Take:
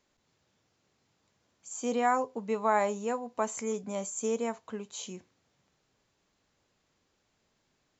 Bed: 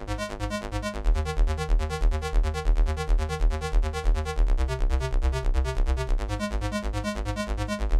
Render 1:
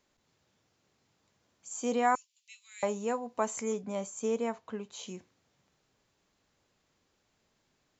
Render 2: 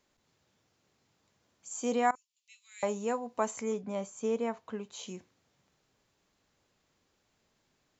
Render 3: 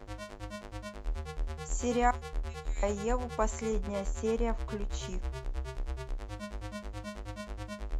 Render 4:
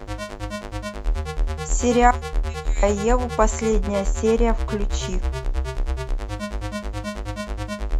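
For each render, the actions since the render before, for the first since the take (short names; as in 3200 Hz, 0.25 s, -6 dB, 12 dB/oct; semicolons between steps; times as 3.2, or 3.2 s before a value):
2.15–2.83 steep high-pass 2600 Hz; 3.74–5.08 air absorption 74 m
2.11–2.91 fade in, from -22 dB; 3.51–4.57 air absorption 66 m
add bed -12 dB
gain +12 dB; limiter -2 dBFS, peak gain reduction 1.5 dB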